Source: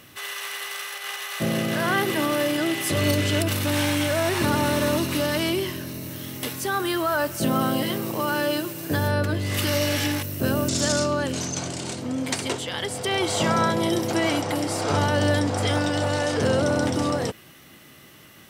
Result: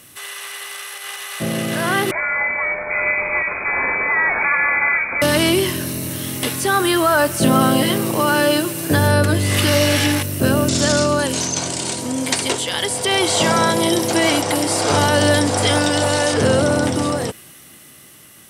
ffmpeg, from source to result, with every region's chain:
ffmpeg -i in.wav -filter_complex "[0:a]asettb=1/sr,asplit=3[link_01][link_02][link_03];[link_01]atrim=end=2.114[link_04];[link_02]atrim=start=2.11:end=5.22,asetpts=PTS-STARTPTS,afade=type=in:duration=0.004:curve=qsin,afade=type=out:start_time=3.106:duration=0.004:curve=qsin,highpass=frequency=230:poles=1,lowshelf=frequency=300:gain=-7.5,lowpass=frequency=2200:width_type=q:width=0.5098,lowpass=frequency=2200:width_type=q:width=0.6013,lowpass=frequency=2200:width_type=q:width=0.9,lowpass=frequency=2200:width_type=q:width=2.563,afreqshift=-2600[link_05];[link_03]atrim=start=5.216[link_06];[link_04][link_05]acrossfade=duration=0.004:curve1=hsin:curve2=qsin[link_07];[link_07][link_06]acrossfade=duration=0.004:curve1=qsin:curve2=hsin,asettb=1/sr,asplit=3[link_08][link_09][link_10];[link_08]atrim=end=11.194[link_11];[link_09]atrim=start=11.19:end=16.34,asetpts=PTS-STARTPTS,afade=type=in:duration=0.004:curve=qsin,afade=type=out:start_time=5.146:duration=0.004:curve=qsin,bass=frequency=250:gain=-4,treble=frequency=4000:gain=6,bandreject=frequency=1300:width=28,aeval=exprs='val(0)+0.00562*sin(2*PI*960*n/s)':channel_layout=same[link_12];[link_10]atrim=start=16.336[link_13];[link_11][link_12]acrossfade=duration=0.004:curve1=hsin:curve2=qsin[link_14];[link_14][link_13]acrossfade=duration=0.004:curve1=qsin:curve2=hsin,acrossover=split=4700[link_15][link_16];[link_16]acompressor=threshold=-43dB:ratio=4:attack=1:release=60[link_17];[link_15][link_17]amix=inputs=2:normalize=0,equalizer=frequency=9700:width=1:gain=14,dynaudnorm=framelen=390:gausssize=11:maxgain=10dB" out.wav

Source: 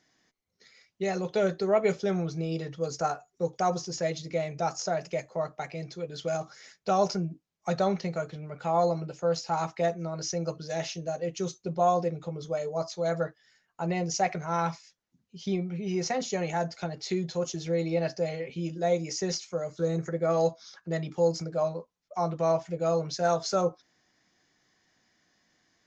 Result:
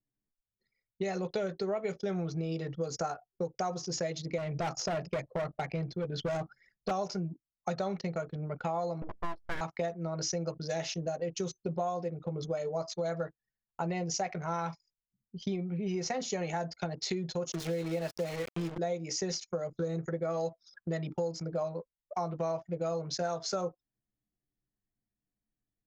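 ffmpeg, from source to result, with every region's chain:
ffmpeg -i in.wav -filter_complex "[0:a]asettb=1/sr,asplit=3[link_01][link_02][link_03];[link_01]atrim=end=4.384[link_04];[link_02]atrim=start=4.38:end=6.91,asetpts=PTS-STARTPTS,afade=type=in:duration=0.004:curve=qsin,afade=type=out:start_time=2.526:duration=0.004:curve=qsin,lowpass=5400,lowshelf=frequency=200:gain=7.5,asoftclip=type=hard:threshold=-28dB[link_05];[link_03]atrim=start=6.906[link_06];[link_04][link_05]acrossfade=duration=0.004:curve1=hsin:curve2=qsin[link_07];[link_07][link_06]acrossfade=duration=0.004:curve1=qsin:curve2=hsin,asettb=1/sr,asplit=3[link_08][link_09][link_10];[link_08]atrim=end=9.024[link_11];[link_09]atrim=start=9.02:end=9.61,asetpts=PTS-STARTPTS,afade=type=in:duration=0.004:curve=qsin,afade=type=out:start_time=0.586:duration=0.004:curve=qsin,lowpass=2200,aeval=exprs='abs(val(0))':channel_layout=same[link_12];[link_10]atrim=start=9.606[link_13];[link_11][link_12]acrossfade=duration=0.004:curve1=hsin:curve2=qsin[link_14];[link_14][link_13]acrossfade=duration=0.004:curve1=qsin:curve2=hsin,asettb=1/sr,asplit=3[link_15][link_16][link_17];[link_15]atrim=end=17.524[link_18];[link_16]atrim=start=17.52:end=18.78,asetpts=PTS-STARTPTS,afade=type=in:duration=0.004:curve=qsin,afade=type=out:start_time=1.256:duration=0.004:curve=qsin,highpass=frequency=120:width=0.5412,highpass=frequency=120:width=1.3066,aeval=exprs='val(0)+0.00282*sin(2*PI*460*n/s)':channel_layout=same,aeval=exprs='val(0)*gte(abs(val(0)),0.015)':channel_layout=same[link_19];[link_17]atrim=start=18.776[link_20];[link_18][link_19]acrossfade=duration=0.004:curve1=hsin:curve2=qsin[link_21];[link_21][link_20]acrossfade=duration=0.004:curve1=qsin:curve2=hsin,anlmdn=0.1,acompressor=threshold=-35dB:ratio=6,volume=4dB" out.wav

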